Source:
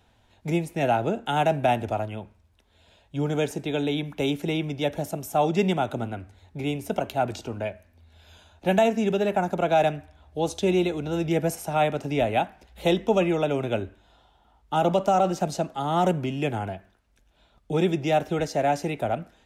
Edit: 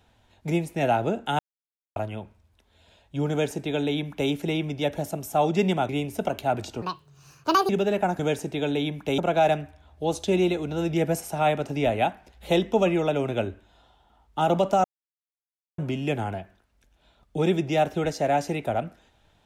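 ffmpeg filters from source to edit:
-filter_complex "[0:a]asplit=10[a][b][c][d][e][f][g][h][i][j];[a]atrim=end=1.39,asetpts=PTS-STARTPTS,afade=t=out:st=1.386:d=0.004:c=hsin[k];[b]atrim=start=1.39:end=1.96,asetpts=PTS-STARTPTS,volume=0[l];[c]atrim=start=1.96:end=5.892,asetpts=PTS-STARTPTS,afade=t=in:d=0.004:c=hsin[m];[d]atrim=start=6.598:end=7.534[n];[e]atrim=start=7.53:end=9.03,asetpts=PTS-STARTPTS,asetrate=75852,aresample=44100,atrim=end_sample=38459,asetpts=PTS-STARTPTS[o];[f]atrim=start=9.026:end=9.532[p];[g]atrim=start=3.308:end=4.302[q];[h]atrim=start=9.528:end=15.19,asetpts=PTS-STARTPTS,afade=t=out:st=5.658:d=0.004:c=hsin[r];[i]atrim=start=15.19:end=16.13,asetpts=PTS-STARTPTS,volume=0[s];[j]atrim=start=16.13,asetpts=PTS-STARTPTS,afade=t=in:d=0.004:c=hsin[t];[k][l][m]concat=n=3:v=0:a=1[u];[u][n]acrossfade=d=0.004:c1=hsin:c2=hsin[v];[v][o]acrossfade=d=0.004:c1=hsin:c2=hsin[w];[w][p]acrossfade=d=0.004:c1=hsin:c2=hsin[x];[x][q]acrossfade=d=0.004:c1=hsin:c2=hsin[y];[r][s][t]concat=n=3:v=0:a=1[z];[y][z]acrossfade=d=0.004:c1=hsin:c2=hsin"

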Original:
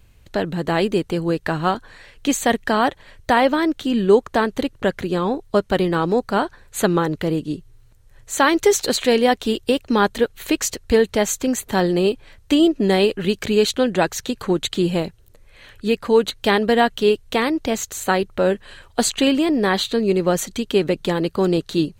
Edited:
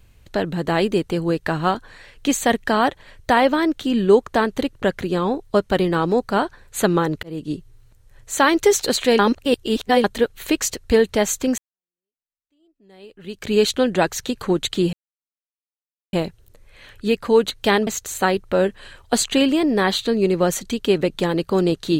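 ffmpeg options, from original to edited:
-filter_complex "[0:a]asplit=7[a][b][c][d][e][f][g];[a]atrim=end=7.23,asetpts=PTS-STARTPTS,afade=t=out:st=7.226:d=0.004:c=hsin[h];[b]atrim=start=7.23:end=9.192,asetpts=PTS-STARTPTS,afade=t=in:d=0.29[i];[c]atrim=start=9.188:end=10.042,asetpts=PTS-STARTPTS,areverse[j];[d]atrim=start=10.038:end=11.58,asetpts=PTS-STARTPTS,afade=t=out:st=1.538:d=0.004:c=hsin[k];[e]atrim=start=11.58:end=14.93,asetpts=PTS-STARTPTS,afade=t=in:d=1.97:c=exp,afade=t=out:st=3.346:d=0.004:c=hsin,apad=pad_dur=1.2[l];[f]atrim=start=14.93:end=16.672,asetpts=PTS-STARTPTS,afade=t=in:d=0.004:c=hsin[m];[g]atrim=start=17.728[n];[h][i]concat=n=2:v=0:a=1[o];[o][j]acrossfade=d=0.004:c1=hsin:c2=hsin[p];[k][l][m]concat=n=3:v=0:a=1[q];[p][q]acrossfade=d=0.004:c1=hsin:c2=hsin[r];[r][n]acrossfade=d=0.004:c1=hsin:c2=hsin"

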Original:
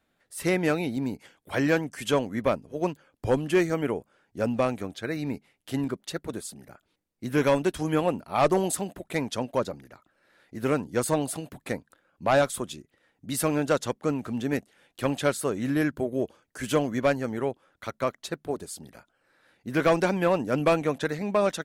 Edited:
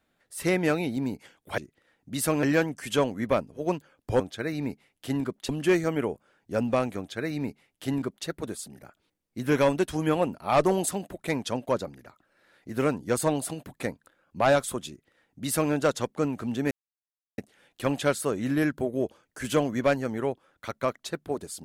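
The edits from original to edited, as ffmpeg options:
-filter_complex "[0:a]asplit=6[a][b][c][d][e][f];[a]atrim=end=1.582[g];[b]atrim=start=12.738:end=13.592[h];[c]atrim=start=1.578:end=3.352[i];[d]atrim=start=4.838:end=6.132[j];[e]atrim=start=3.348:end=14.57,asetpts=PTS-STARTPTS,afade=t=out:st=11.218:d=0.004:c=hsin,apad=pad_dur=0.67[k];[f]atrim=start=14.57,asetpts=PTS-STARTPTS,afade=t=in:d=0.004:c=hsin[l];[g][h]acrossfade=d=0.004:c1=hsin:c2=hsin[m];[m][i]acrossfade=d=0.004:c1=hsin:c2=hsin[n];[n][j]acrossfade=d=0.004:c1=hsin:c2=hsin[o];[k][l]concat=n=2:v=0:a=1[p];[o][p]acrossfade=d=0.004:c1=hsin:c2=hsin"

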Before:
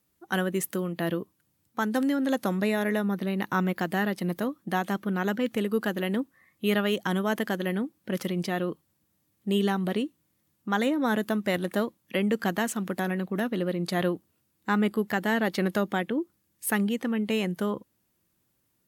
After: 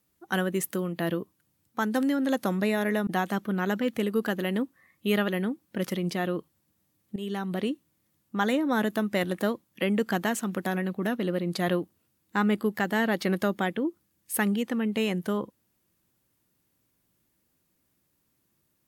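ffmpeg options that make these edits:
-filter_complex "[0:a]asplit=4[a][b][c][d];[a]atrim=end=3.072[e];[b]atrim=start=4.648:end=6.862[f];[c]atrim=start=7.608:end=9.49,asetpts=PTS-STARTPTS,afade=t=out:st=1.878:d=0.004:c=hsin:silence=0.199526[g];[d]atrim=start=9.49,asetpts=PTS-STARTPTS,afade=t=in:d=0.55:silence=0.199526[h];[e][f]acrossfade=d=0.004:c1=hsin:c2=hsin[i];[g][h]concat=n=2:v=0:a=1[j];[i][j]acrossfade=d=0.004:c1=hsin:c2=hsin"

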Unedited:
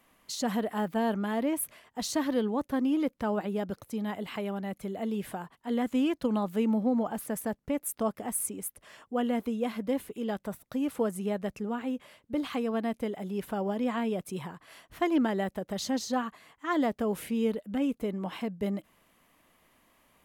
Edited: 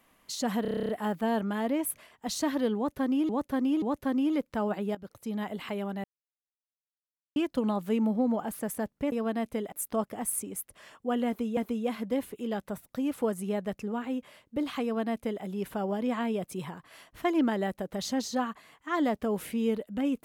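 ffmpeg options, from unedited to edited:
-filter_complex "[0:a]asplit=18[a][b][c][d][e][f][g][h][i][j][k][l][m][n][o][p][q][r];[a]atrim=end=0.652[s];[b]atrim=start=0.618:end=0.652[t];[c]atrim=start=0.618:end=0.652[u];[d]atrim=start=0.618:end=0.652[v];[e]atrim=start=0.618:end=0.652[w];[f]atrim=start=0.618:end=0.652[x];[g]atrim=start=0.618:end=0.652[y];[h]atrim=start=0.618:end=0.652[z];[i]atrim=start=0.618:end=0.652[aa];[j]atrim=start=0.618:end=3.022[ab];[k]atrim=start=2.488:end=3.022[ac];[l]atrim=start=2.488:end=3.62,asetpts=PTS-STARTPTS,afade=t=out:st=1.128:d=0.004:c=hsin:silence=0.188365[ad];[m]atrim=start=3.62:end=4.71,asetpts=PTS-STARTPTS,afade=t=in:d=0.4:silence=0.188365,afade=t=out:st=1.086:d=0.004:c=hsin[ae];[n]atrim=start=4.71:end=6.03,asetpts=PTS-STARTPTS,volume=0[af];[o]atrim=start=6.03:end=7.792,asetpts=PTS-STARTPTS,afade=t=in:d=0.004:c=hsin[ag];[p]atrim=start=12.598:end=13.202[ah];[q]atrim=start=7.788:end=9.642[ai];[r]atrim=start=9.338[aj];[s][t]acrossfade=d=0.004:c1=hsin:c2=hsin[ak];[ak][u]acrossfade=d=0.004:c1=hsin:c2=hsin[al];[al][v]acrossfade=d=0.004:c1=hsin:c2=hsin[am];[am][w]acrossfade=d=0.004:c1=hsin:c2=hsin[an];[an][x]acrossfade=d=0.004:c1=hsin:c2=hsin[ao];[ao][y]acrossfade=d=0.004:c1=hsin:c2=hsin[ap];[ap][z]acrossfade=d=0.004:c1=hsin:c2=hsin[aq];[aq][aa]acrossfade=d=0.004:c1=hsin:c2=hsin[ar];[ar][ab]acrossfade=d=0.004:c1=hsin:c2=hsin[as];[as][ac]acrossfade=d=0.004:c1=hsin:c2=hsin[at];[ad][ae][af][ag]concat=n=4:v=0:a=1[au];[at][au]acrossfade=d=0.004:c1=hsin:c2=hsin[av];[av][ah]acrossfade=d=0.004:c1=hsin:c2=hsin[aw];[aw][ai]acrossfade=d=0.004:c1=hsin:c2=hsin[ax];[ax][aj]acrossfade=d=0.004:c1=hsin:c2=hsin"

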